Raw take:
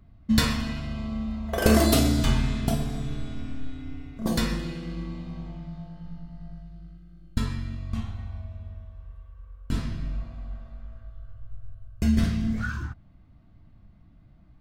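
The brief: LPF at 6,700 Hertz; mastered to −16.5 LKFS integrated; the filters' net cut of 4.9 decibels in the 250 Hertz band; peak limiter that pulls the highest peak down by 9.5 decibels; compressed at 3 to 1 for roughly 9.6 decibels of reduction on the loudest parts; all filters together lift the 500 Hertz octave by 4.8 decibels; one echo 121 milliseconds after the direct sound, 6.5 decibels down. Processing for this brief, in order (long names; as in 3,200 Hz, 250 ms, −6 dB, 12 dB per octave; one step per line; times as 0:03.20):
low-pass filter 6,700 Hz
parametric band 250 Hz −8 dB
parametric band 500 Hz +8.5 dB
downward compressor 3 to 1, threshold −26 dBFS
brickwall limiter −22 dBFS
single-tap delay 121 ms −6.5 dB
level +18 dB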